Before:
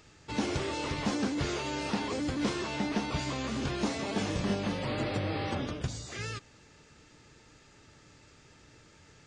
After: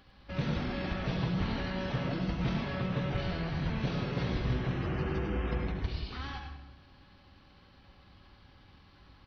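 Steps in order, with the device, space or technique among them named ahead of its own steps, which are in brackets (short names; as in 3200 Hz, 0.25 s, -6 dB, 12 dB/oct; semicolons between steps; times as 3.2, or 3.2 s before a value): monster voice (pitch shift -8 st; low shelf 130 Hz +3.5 dB; echo 0.103 s -8.5 dB; reverb RT60 0.95 s, pre-delay 66 ms, DRR 4.5 dB); gain -3 dB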